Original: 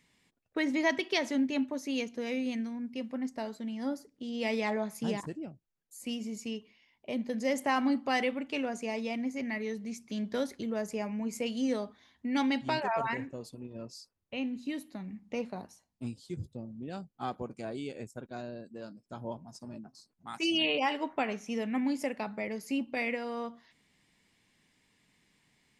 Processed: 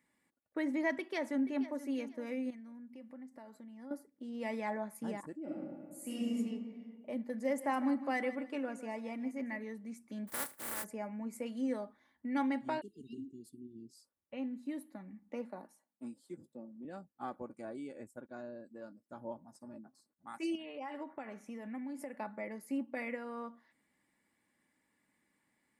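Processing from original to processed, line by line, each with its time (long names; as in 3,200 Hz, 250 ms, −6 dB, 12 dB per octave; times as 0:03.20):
0:00.96–0:01.81: delay throw 480 ms, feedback 25%, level −14.5 dB
0:02.50–0:03.91: downward compressor 4 to 1, threshold −44 dBFS
0:05.41–0:06.36: thrown reverb, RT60 1.9 s, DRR −7.5 dB
0:07.28–0:09.64: repeating echo 155 ms, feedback 25%, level −14 dB
0:10.27–0:10.83: compressing power law on the bin magnitudes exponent 0.14
0:12.81–0:13.96: linear-phase brick-wall band-stop 440–2,700 Hz
0:15.29–0:16.85: high-pass filter 170 Hz 24 dB per octave
0:20.55–0:22.16: downward compressor 12 to 1, threshold −34 dBFS
whole clip: high-pass filter 200 Hz 6 dB per octave; flat-topped bell 4,100 Hz −11.5 dB; comb filter 3.5 ms, depth 40%; level −5 dB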